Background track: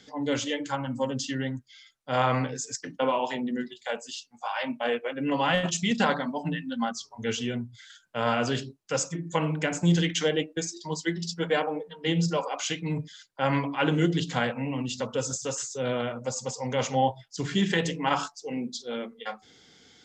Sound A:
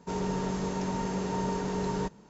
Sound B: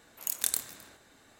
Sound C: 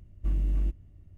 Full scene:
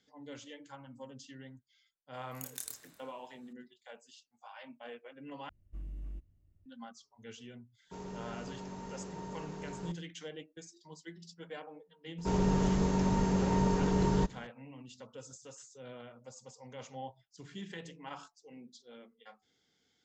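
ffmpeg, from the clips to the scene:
-filter_complex "[1:a]asplit=2[a][b];[0:a]volume=-19.5dB[c];[2:a]asplit=2[d][e];[e]adelay=31,volume=-9dB[f];[d][f]amix=inputs=2:normalize=0[g];[a]agate=range=-13dB:threshold=-51dB:ratio=16:release=100:detection=peak[h];[b]lowshelf=f=150:g=11[i];[c]asplit=2[j][k];[j]atrim=end=5.494[l];[3:a]atrim=end=1.17,asetpts=PTS-STARTPTS,volume=-16dB[m];[k]atrim=start=6.656[n];[g]atrim=end=1.39,asetpts=PTS-STARTPTS,volume=-13.5dB,afade=t=in:d=0.004:c=hsin,afade=t=out:st=1.386:d=0.004:c=hsin,adelay=2140[o];[h]atrim=end=2.29,asetpts=PTS-STARTPTS,volume=-13dB,afade=t=in:d=0.05,afade=t=out:st=2.24:d=0.05,adelay=7840[p];[i]atrim=end=2.29,asetpts=PTS-STARTPTS,volume=-1dB,afade=t=in:d=0.004:c=hsin,afade=t=out:st=2.286:d=0.004:c=hsin,adelay=12180[q];[l][m]acrossfade=d=0.004:c1=hsin:c2=hsin[r];[r][n]acrossfade=d=0.004:c1=hsin:c2=hsin[s];[s][o][p][q]amix=inputs=4:normalize=0"

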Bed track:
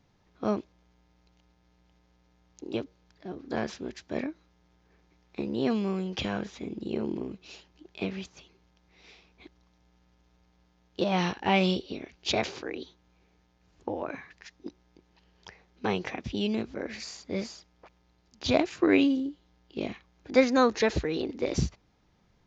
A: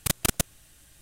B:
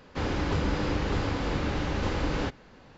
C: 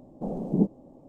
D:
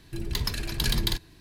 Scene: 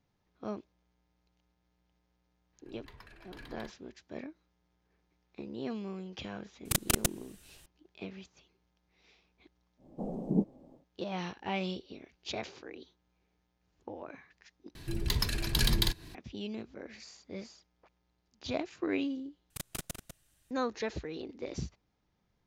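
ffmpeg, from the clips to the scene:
-filter_complex "[4:a]asplit=2[a][b];[1:a]asplit=2[c][d];[0:a]volume=-10.5dB[e];[a]acrossover=split=470 2400:gain=0.251 1 0.1[f][g][h];[f][g][h]amix=inputs=3:normalize=0[i];[b]acompressor=mode=upward:threshold=-38dB:ratio=2.5:attack=3.2:release=140:knee=2.83:detection=peak[j];[d]asplit=2[k][l];[l]adelay=198.3,volume=-7dB,highshelf=f=4k:g=-4.46[m];[k][m]amix=inputs=2:normalize=0[n];[e]asplit=3[o][p][q];[o]atrim=end=14.754[r];[j]atrim=end=1.4,asetpts=PTS-STARTPTS,volume=-1.5dB[s];[p]atrim=start=16.146:end=19.504[t];[n]atrim=end=1.01,asetpts=PTS-STARTPTS,volume=-15.5dB[u];[q]atrim=start=20.506[v];[i]atrim=end=1.4,asetpts=PTS-STARTPTS,volume=-14.5dB,afade=t=in:d=0.004:c=hsin,afade=t=out:st=1.396:d=0.004:c=hsin,adelay=2530[w];[c]atrim=end=1.01,asetpts=PTS-STARTPTS,volume=-3.5dB,afade=t=in:d=0.004:c=hsin,afade=t=out:st=1.006:d=0.004:c=hsin,adelay=6650[x];[3:a]atrim=end=1.08,asetpts=PTS-STARTPTS,volume=-5.5dB,afade=t=in:d=0.1,afade=t=out:st=0.98:d=0.1,adelay=9770[y];[r][s]acrossfade=d=0.004:c1=hsin:c2=hsin[z];[z][t]acrossfade=d=0.004:c1=hsin:c2=hsin[aa];[aa][u]acrossfade=d=0.004:c1=hsin:c2=hsin[ab];[ab][v]acrossfade=d=0.004:c1=hsin:c2=hsin[ac];[ac][w][x][y]amix=inputs=4:normalize=0"

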